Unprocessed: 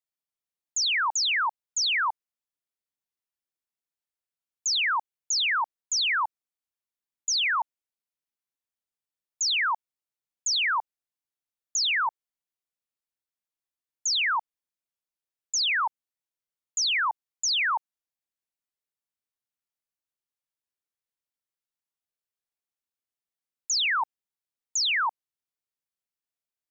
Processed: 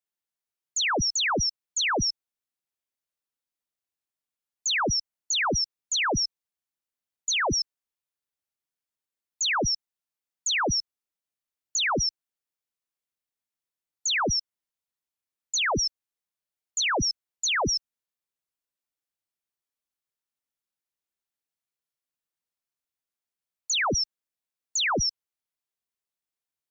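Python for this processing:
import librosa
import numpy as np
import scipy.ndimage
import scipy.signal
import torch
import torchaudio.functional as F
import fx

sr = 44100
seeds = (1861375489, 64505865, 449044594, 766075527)

y = fx.band_shuffle(x, sr, order='2341')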